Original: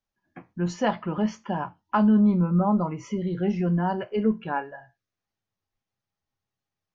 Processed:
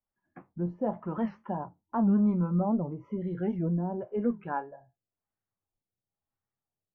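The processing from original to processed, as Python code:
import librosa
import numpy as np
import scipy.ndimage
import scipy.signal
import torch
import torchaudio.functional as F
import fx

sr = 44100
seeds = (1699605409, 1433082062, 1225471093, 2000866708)

y = fx.filter_lfo_lowpass(x, sr, shape='sine', hz=0.97, low_hz=500.0, high_hz=1700.0, q=1.1)
y = fx.record_warp(y, sr, rpm=78.0, depth_cents=160.0)
y = y * librosa.db_to_amplitude(-5.5)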